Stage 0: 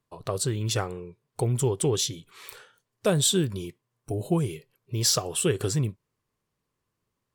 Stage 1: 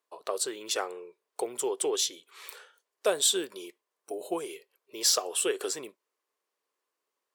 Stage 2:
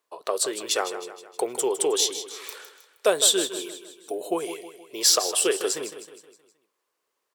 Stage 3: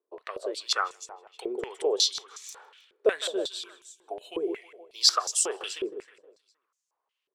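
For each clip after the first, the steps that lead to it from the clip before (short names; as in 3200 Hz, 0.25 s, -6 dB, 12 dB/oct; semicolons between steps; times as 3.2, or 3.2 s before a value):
HPF 390 Hz 24 dB/oct; gain -1 dB
feedback echo 0.157 s, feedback 49%, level -11.5 dB; gain +5.5 dB
stepped band-pass 5.5 Hz 380–6600 Hz; gain +6 dB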